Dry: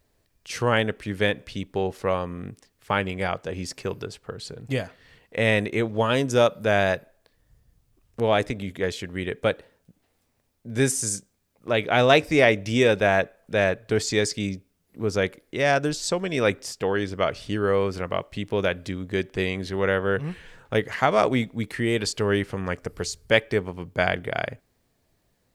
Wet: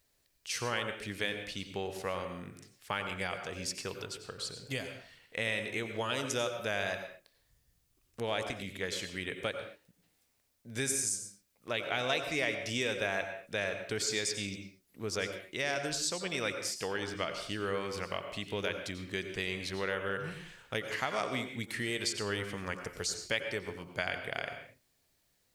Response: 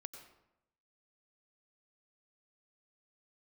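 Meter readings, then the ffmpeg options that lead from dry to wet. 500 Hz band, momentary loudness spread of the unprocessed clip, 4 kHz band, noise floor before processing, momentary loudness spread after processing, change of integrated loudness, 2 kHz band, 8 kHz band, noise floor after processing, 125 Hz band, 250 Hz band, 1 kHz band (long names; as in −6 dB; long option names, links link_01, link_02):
−13.5 dB, 12 LU, −5.5 dB, −70 dBFS, 10 LU, −10.5 dB, −8.5 dB, −3.5 dB, −74 dBFS, −14.0 dB, −13.5 dB, −12.0 dB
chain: -filter_complex "[0:a]tiltshelf=frequency=1500:gain=-6.5,acompressor=threshold=-27dB:ratio=2.5[link_01];[1:a]atrim=start_sample=2205,afade=type=out:start_time=0.3:duration=0.01,atrim=end_sample=13671[link_02];[link_01][link_02]afir=irnorm=-1:irlink=0"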